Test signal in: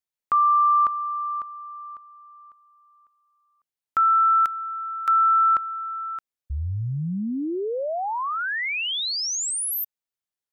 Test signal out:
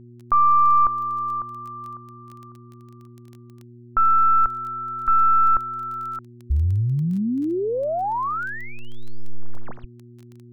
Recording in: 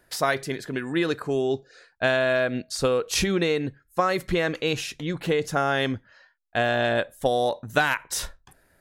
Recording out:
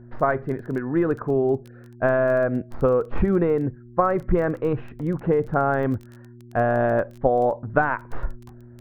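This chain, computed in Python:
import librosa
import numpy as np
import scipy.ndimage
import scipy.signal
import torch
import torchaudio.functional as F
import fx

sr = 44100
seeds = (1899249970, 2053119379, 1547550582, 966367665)

y = fx.tracing_dist(x, sr, depth_ms=0.049)
y = scipy.signal.sosfilt(scipy.signal.butter(4, 1400.0, 'lowpass', fs=sr, output='sos'), y)
y = fx.low_shelf(y, sr, hz=74.0, db=11.0)
y = fx.dmg_buzz(y, sr, base_hz=120.0, harmonics=3, level_db=-48.0, tilt_db=-4, odd_only=False)
y = fx.dmg_crackle(y, sr, seeds[0], per_s=13.0, level_db=-36.0)
y = y * 10.0 ** (3.0 / 20.0)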